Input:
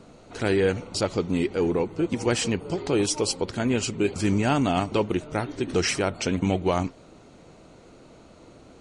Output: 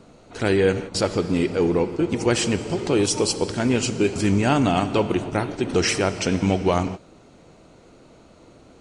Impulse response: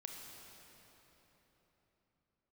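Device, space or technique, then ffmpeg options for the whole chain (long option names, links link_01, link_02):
keyed gated reverb: -filter_complex "[0:a]asplit=3[link_01][link_02][link_03];[1:a]atrim=start_sample=2205[link_04];[link_02][link_04]afir=irnorm=-1:irlink=0[link_05];[link_03]apad=whole_len=388262[link_06];[link_05][link_06]sidechaingate=range=-33dB:threshold=-36dB:ratio=16:detection=peak,volume=-1.5dB[link_07];[link_01][link_07]amix=inputs=2:normalize=0"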